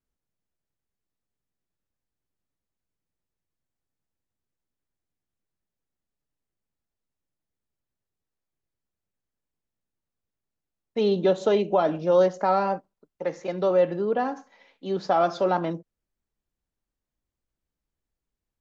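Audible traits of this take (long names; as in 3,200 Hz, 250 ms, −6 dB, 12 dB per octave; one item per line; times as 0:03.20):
background noise floor −87 dBFS
spectral slope −5.0 dB per octave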